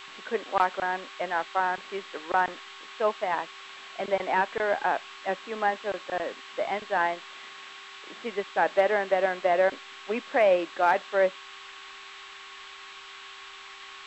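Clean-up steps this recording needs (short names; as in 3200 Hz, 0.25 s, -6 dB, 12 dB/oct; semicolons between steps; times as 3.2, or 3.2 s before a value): clip repair -12 dBFS; de-hum 392.7 Hz, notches 20; notch 1100 Hz, Q 30; noise print and reduce 26 dB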